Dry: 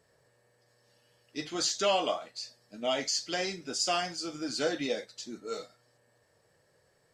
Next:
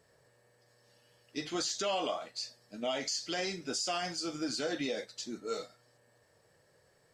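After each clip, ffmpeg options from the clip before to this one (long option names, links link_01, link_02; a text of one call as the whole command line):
ffmpeg -i in.wav -af "alimiter=level_in=1.5dB:limit=-24dB:level=0:latency=1:release=89,volume=-1.5dB,volume=1dB" out.wav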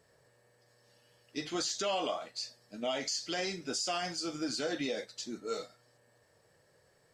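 ffmpeg -i in.wav -af anull out.wav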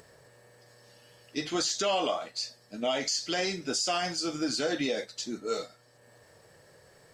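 ffmpeg -i in.wav -af "acompressor=mode=upward:threshold=-55dB:ratio=2.5,volume=5dB" out.wav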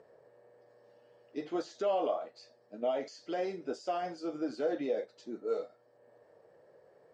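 ffmpeg -i in.wav -af "bandpass=frequency=510:width_type=q:width=1.3:csg=0" out.wav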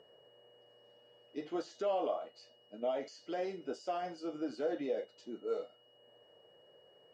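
ffmpeg -i in.wav -af "aeval=exprs='val(0)+0.000708*sin(2*PI*2900*n/s)':channel_layout=same,volume=-3dB" out.wav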